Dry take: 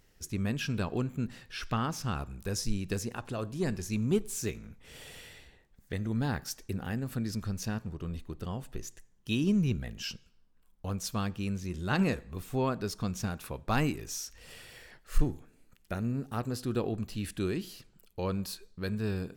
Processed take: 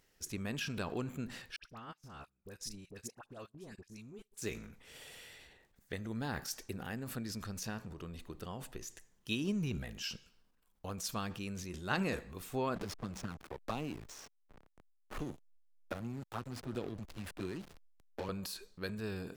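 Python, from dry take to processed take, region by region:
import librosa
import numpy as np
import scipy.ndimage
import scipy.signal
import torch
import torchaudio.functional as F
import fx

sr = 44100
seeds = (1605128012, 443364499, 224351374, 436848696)

y = fx.chain(x, sr, fx.level_steps(step_db=19),
    fx.dispersion(late='highs', ms=63.0, hz=1300.0),
    fx.upward_expand(threshold_db=-50.0, expansion=2.5), at=(1.56, 4.42))
y = fx.chain(y, sr, fx.env_flanger(rest_ms=9.7, full_db=-25.5),
    fx.backlash(play_db=-37.0),
    fx.band_squash(depth_pct=70), at=(12.75, 18.29))
y = fx.low_shelf(y, sr, hz=230.0, db=-9.5)
y = fx.transient(y, sr, attack_db=3, sustain_db=8)
y = y * 10.0 ** (-4.0 / 20.0)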